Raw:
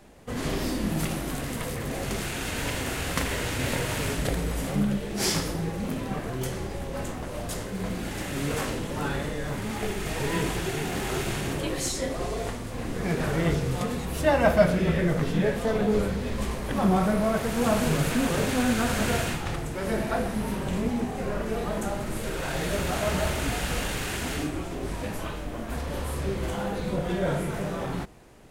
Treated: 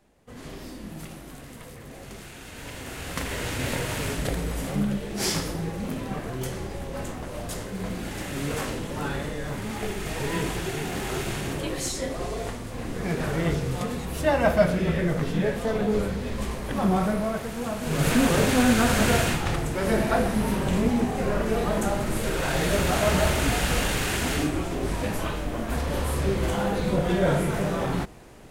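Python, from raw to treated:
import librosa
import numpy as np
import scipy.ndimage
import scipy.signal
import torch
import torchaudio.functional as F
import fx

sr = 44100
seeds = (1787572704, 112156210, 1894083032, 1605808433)

y = fx.gain(x, sr, db=fx.line((2.49, -11.0), (3.47, -0.5), (17.05, -0.5), (17.79, -8.0), (18.08, 4.5)))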